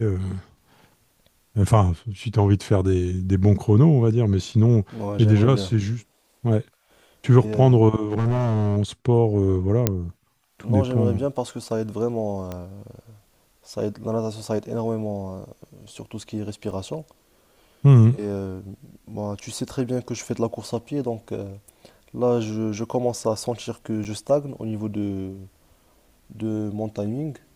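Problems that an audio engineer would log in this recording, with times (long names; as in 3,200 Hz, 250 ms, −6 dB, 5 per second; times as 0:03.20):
0:08.12–0:08.78: clipping −17 dBFS
0:09.87: click −3 dBFS
0:12.52: click −18 dBFS
0:16.71: drop-out 3 ms
0:24.04–0:24.05: drop-out 8.8 ms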